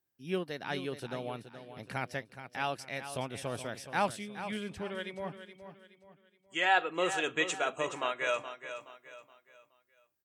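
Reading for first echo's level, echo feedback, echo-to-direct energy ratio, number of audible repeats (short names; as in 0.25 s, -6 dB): -11.0 dB, 37%, -10.5 dB, 3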